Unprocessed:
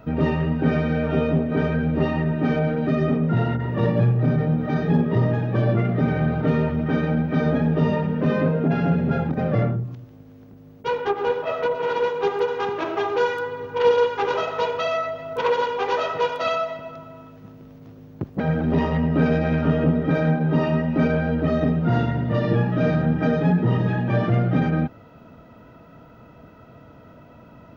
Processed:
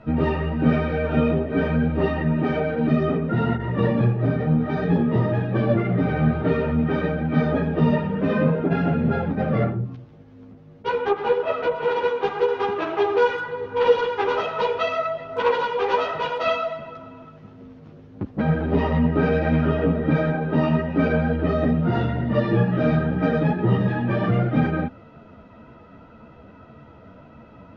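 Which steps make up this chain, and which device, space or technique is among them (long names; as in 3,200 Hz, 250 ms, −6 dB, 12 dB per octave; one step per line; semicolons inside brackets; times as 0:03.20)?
string-machine ensemble chorus (string-ensemble chorus; low-pass filter 4,500 Hz 12 dB per octave)
level +4 dB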